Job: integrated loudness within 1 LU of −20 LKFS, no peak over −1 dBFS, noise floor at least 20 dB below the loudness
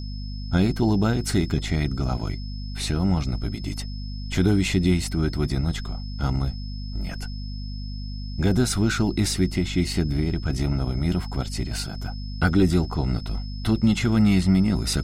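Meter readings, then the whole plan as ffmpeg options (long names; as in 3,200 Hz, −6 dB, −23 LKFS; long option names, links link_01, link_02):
mains hum 50 Hz; hum harmonics up to 250 Hz; level of the hum −29 dBFS; interfering tone 5,200 Hz; level of the tone −43 dBFS; integrated loudness −24.5 LKFS; sample peak −8.5 dBFS; target loudness −20.0 LKFS
→ -af "bandreject=frequency=50:width_type=h:width=6,bandreject=frequency=100:width_type=h:width=6,bandreject=frequency=150:width_type=h:width=6,bandreject=frequency=200:width_type=h:width=6,bandreject=frequency=250:width_type=h:width=6"
-af "bandreject=frequency=5200:width=30"
-af "volume=4.5dB"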